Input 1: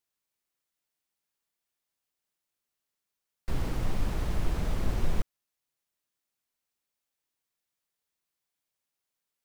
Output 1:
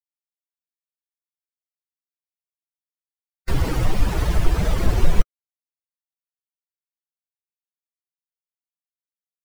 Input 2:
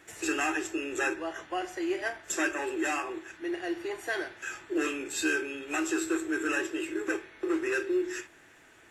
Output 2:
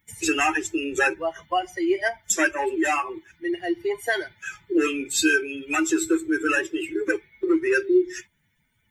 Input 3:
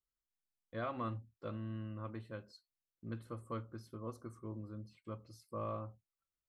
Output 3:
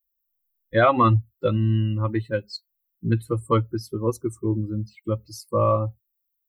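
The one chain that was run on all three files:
per-bin expansion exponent 2; in parallel at -1.5 dB: compressor, threshold -39 dBFS; on the sum: dynamic EQ 230 Hz, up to -5 dB, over -55 dBFS, Q 4.2; match loudness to -24 LUFS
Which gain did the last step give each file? +13.0, +10.0, +21.0 dB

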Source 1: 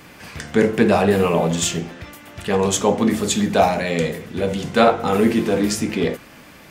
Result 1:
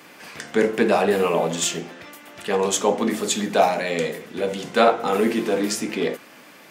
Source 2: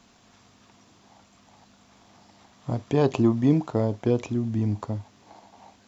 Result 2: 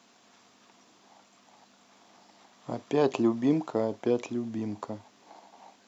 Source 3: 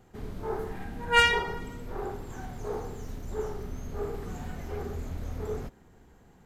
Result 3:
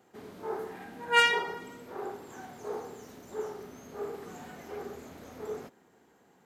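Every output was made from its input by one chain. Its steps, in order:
HPF 260 Hz 12 dB/oct; gain -1.5 dB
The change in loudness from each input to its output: -3.0, -4.5, -1.0 LU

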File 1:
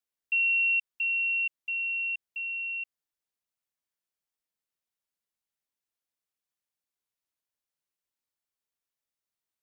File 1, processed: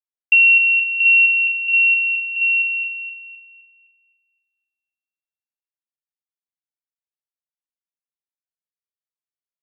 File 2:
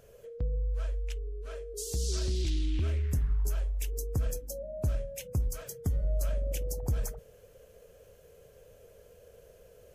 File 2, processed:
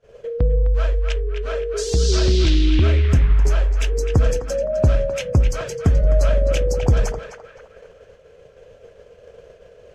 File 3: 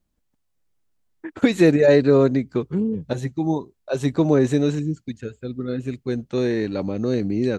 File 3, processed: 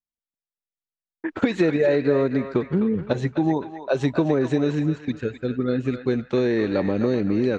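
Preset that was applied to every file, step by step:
expander -48 dBFS; low shelf 240 Hz -6 dB; compressor 5:1, threshold -25 dBFS; air absorption 140 m; on a send: narrowing echo 0.258 s, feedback 46%, band-pass 1700 Hz, level -6 dB; on the sum: normalise peaks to -6 dBFS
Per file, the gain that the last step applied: +18.0, +19.5, +7.5 dB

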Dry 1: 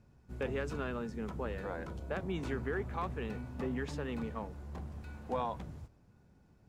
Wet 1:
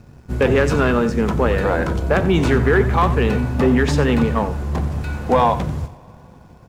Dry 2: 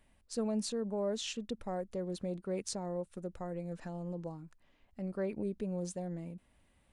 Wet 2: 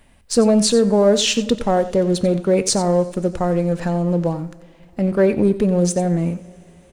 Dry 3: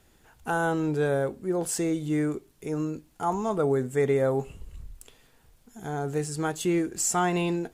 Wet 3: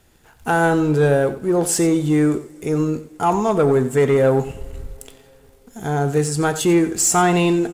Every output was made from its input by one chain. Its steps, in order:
sample leveller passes 1; echo 90 ms -14 dB; two-slope reverb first 0.37 s, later 4.3 s, from -19 dB, DRR 14.5 dB; match loudness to -18 LUFS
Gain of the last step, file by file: +17.5, +17.0, +6.5 dB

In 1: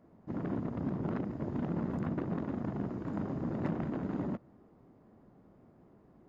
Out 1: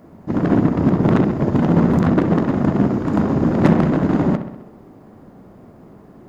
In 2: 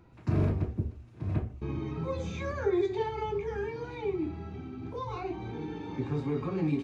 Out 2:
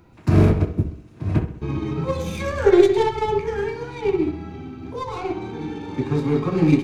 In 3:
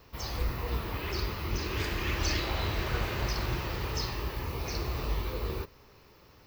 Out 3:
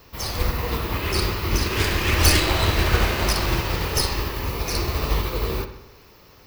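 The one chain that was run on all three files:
tracing distortion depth 0.072 ms; high shelf 4800 Hz +6 dB; notches 60/120 Hz; on a send: dark delay 65 ms, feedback 58%, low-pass 3700 Hz, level -8.5 dB; on the sum: upward expander 1.5:1, over -38 dBFS; normalise peaks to -1.5 dBFS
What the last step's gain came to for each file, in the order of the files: +20.5, +14.0, +12.5 dB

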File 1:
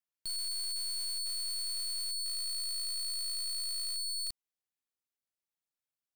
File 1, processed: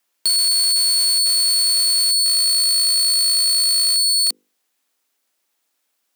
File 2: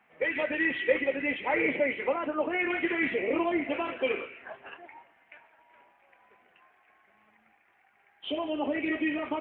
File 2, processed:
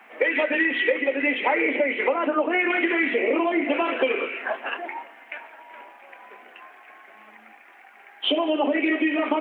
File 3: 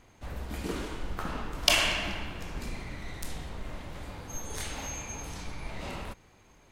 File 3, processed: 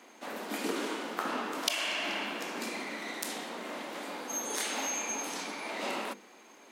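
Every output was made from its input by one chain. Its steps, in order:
steep high-pass 220 Hz 48 dB/oct; notches 50/100/150/200/250/300/350/400/450/500 Hz; compressor 8:1, threshold -35 dBFS; normalise peaks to -9 dBFS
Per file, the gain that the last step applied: +22.0, +16.0, +6.5 dB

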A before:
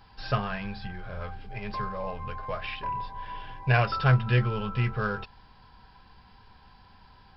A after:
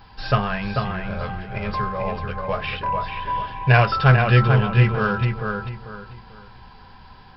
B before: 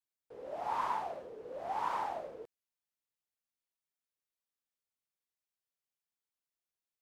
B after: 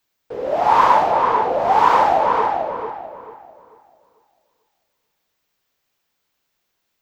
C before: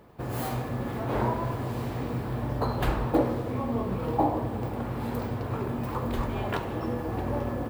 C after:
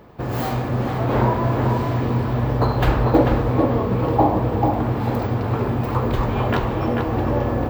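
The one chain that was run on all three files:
bell 10000 Hz -14 dB 0.55 oct; on a send: darkening echo 0.442 s, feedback 30%, low-pass 3000 Hz, level -4 dB; on the sum: normalise peaks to -2 dBFS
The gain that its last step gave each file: +7.5, +21.5, +8.0 dB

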